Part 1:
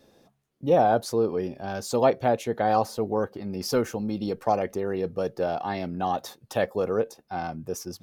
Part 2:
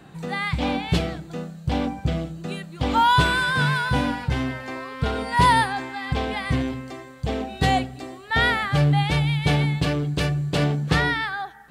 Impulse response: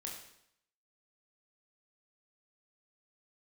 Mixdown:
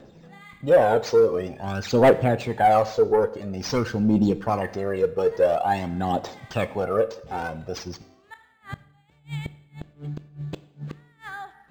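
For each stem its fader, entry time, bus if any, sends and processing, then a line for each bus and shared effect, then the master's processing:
+1.0 dB, 0.00 s, send -7 dB, phaser 0.48 Hz, delay 2.4 ms, feedback 69%; soft clip -12.5 dBFS, distortion -11 dB
-7.5 dB, 0.00 s, send -10.5 dB, flipped gate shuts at -14 dBFS, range -33 dB; auto duck -24 dB, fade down 0.25 s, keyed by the first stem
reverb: on, RT60 0.75 s, pre-delay 20 ms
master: high shelf 12000 Hz -7.5 dB; decimation joined by straight lines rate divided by 4×

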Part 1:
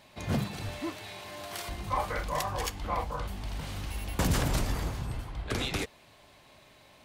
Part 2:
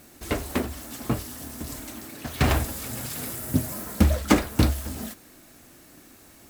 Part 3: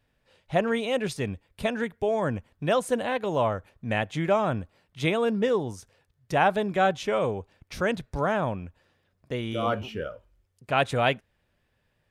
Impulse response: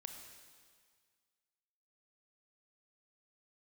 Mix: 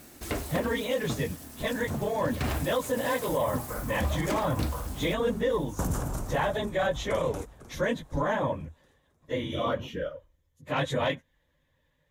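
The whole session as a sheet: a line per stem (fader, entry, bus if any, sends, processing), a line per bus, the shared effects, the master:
-1.5 dB, 1.60 s, no send, echo send -13.5 dB, tremolo saw down 0.96 Hz, depth 70%; band shelf 3000 Hz -13.5 dB
+1.0 dB, 0.00 s, no send, no echo send, auto duck -8 dB, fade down 1.15 s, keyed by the third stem
-1.5 dB, 0.00 s, no send, no echo send, phase scrambler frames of 50 ms; soft clip -12 dBFS, distortion -24 dB; ripple EQ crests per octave 1.1, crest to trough 9 dB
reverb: off
echo: feedback echo 0.499 s, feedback 41%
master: limiter -18.5 dBFS, peak gain reduction 9 dB

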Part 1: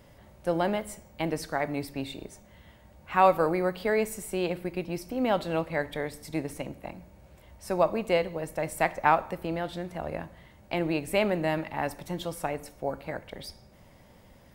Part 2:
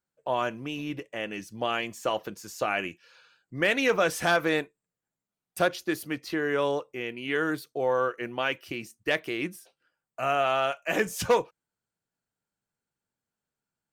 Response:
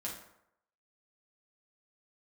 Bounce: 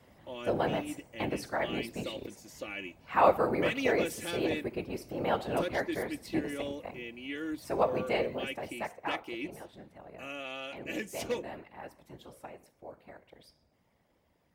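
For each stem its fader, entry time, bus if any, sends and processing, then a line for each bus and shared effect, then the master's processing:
8.34 s -3 dB -> 9.01 s -15 dB, 0.00 s, no send, de-hum 254.8 Hz, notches 35; whisperiser
-8.5 dB, 0.00 s, no send, band shelf 1000 Hz -11.5 dB; comb 3.5 ms, depth 59%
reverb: off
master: HPF 44 Hz; tone controls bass -2 dB, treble -3 dB

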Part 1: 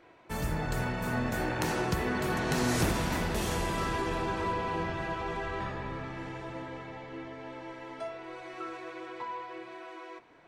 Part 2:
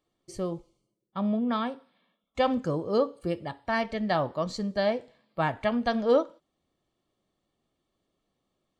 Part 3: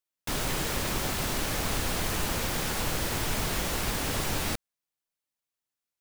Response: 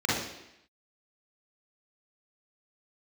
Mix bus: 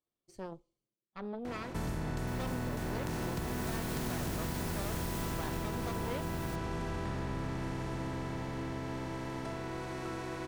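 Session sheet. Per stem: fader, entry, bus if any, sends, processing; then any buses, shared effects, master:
-11.0 dB, 1.45 s, no send, per-bin compression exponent 0.4; low shelf 410 Hz +7 dB
-15.5 dB, 0.00 s, no send, added harmonics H 8 -12 dB, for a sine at -11 dBFS
3.08 s -21.5 dB -> 3.76 s -11 dB -> 5.17 s -11 dB -> 5.73 s -18.5 dB, 2.00 s, no send, high shelf 7700 Hz +8 dB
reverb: off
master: compressor, threshold -32 dBFS, peak gain reduction 7 dB

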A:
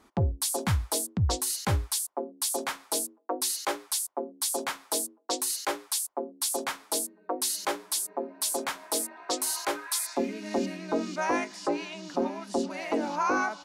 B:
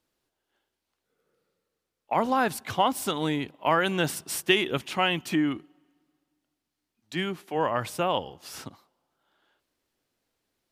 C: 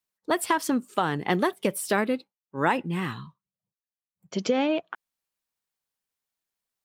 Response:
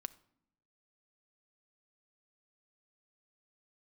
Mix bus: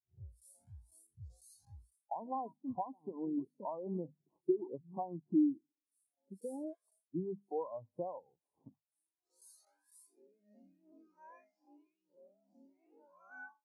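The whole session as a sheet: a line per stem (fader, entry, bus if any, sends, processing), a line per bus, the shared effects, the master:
-6.5 dB, 0.00 s, no bus, no send, time blur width 0.195 s; cascading flanger rising 1.1 Hz; auto duck -15 dB, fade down 0.25 s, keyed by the second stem
+2.0 dB, 0.00 s, bus A, no send, notches 50/100/150/200/250 Hz
-11.5 dB, 1.95 s, bus A, no send, dry
bus A: 0.0 dB, steep low-pass 1100 Hz 96 dB/oct; compressor 5:1, threshold -34 dBFS, peak gain reduction 16 dB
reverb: off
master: HPF 80 Hz 12 dB/oct; high shelf 4000 Hz +11.5 dB; spectral expander 2.5:1

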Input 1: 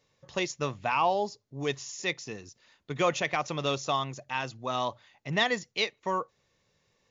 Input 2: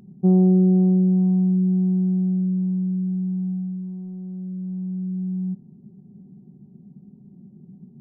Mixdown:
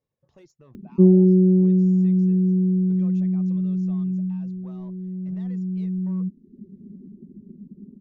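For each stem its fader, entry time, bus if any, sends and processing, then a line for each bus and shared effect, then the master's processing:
-17.5 dB, 0.00 s, no send, limiter -25.5 dBFS, peak gain reduction 12 dB; one-sided clip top -32 dBFS, bottom -28.5 dBFS
+1.0 dB, 0.75 s, no send, upward compressor, threshold -39 dBFS; fixed phaser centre 320 Hz, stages 4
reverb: off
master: tilt shelf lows +8.5 dB, about 1100 Hz; reverb removal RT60 0.68 s

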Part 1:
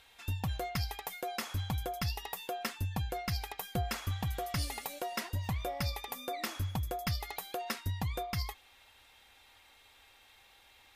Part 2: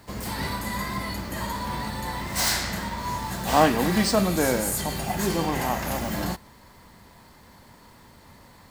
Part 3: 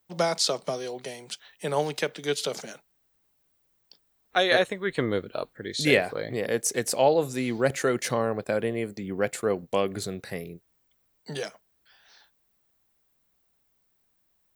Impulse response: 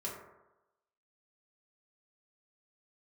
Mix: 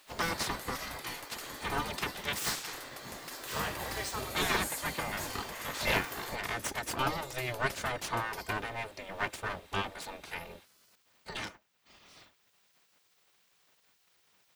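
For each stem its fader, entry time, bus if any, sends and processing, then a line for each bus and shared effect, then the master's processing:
-7.5 dB, 0.00 s, no send, spectral compressor 2:1
-9.5 dB, 0.00 s, no send, dry
0.0 dB, 0.00 s, no send, minimum comb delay 3.3 ms; high shelf 5300 Hz -10 dB; three-band squash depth 40%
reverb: off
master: spectral gate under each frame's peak -10 dB weak

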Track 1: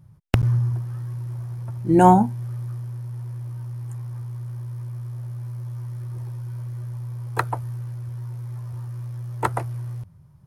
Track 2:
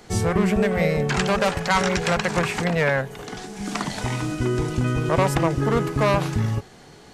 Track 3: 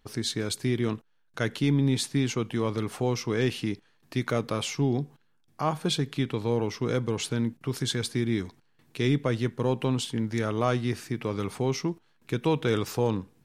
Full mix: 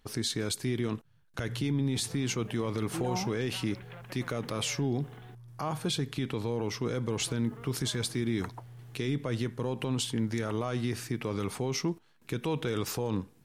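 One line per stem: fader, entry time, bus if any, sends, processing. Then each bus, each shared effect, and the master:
-18.0 dB, 1.05 s, no send, dry
-15.5 dB, 1.85 s, muted 5.35–7.07, no send, elliptic low-pass 3500 Hz; compressor 4:1, threshold -32 dBFS, peak gain reduction 14.5 dB; bit-crush 9-bit
+0.5 dB, 0.00 s, no send, bell 12000 Hz +3.5 dB 1.4 oct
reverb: off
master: limiter -21.5 dBFS, peak gain reduction 10.5 dB

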